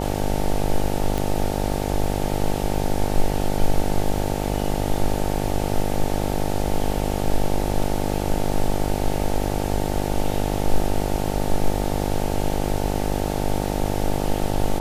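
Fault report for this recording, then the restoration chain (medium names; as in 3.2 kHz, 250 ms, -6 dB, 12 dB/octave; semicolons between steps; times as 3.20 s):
buzz 50 Hz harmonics 18 -25 dBFS
1.18 s: pop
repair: de-click; de-hum 50 Hz, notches 18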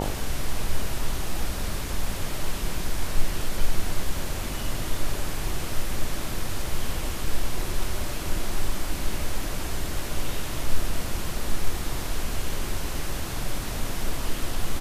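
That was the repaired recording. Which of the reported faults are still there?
nothing left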